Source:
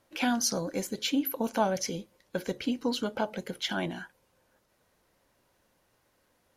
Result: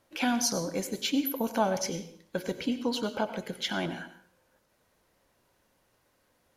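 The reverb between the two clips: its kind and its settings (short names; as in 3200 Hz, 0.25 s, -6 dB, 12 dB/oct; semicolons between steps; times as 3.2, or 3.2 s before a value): plate-style reverb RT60 0.51 s, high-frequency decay 0.95×, pre-delay 80 ms, DRR 11 dB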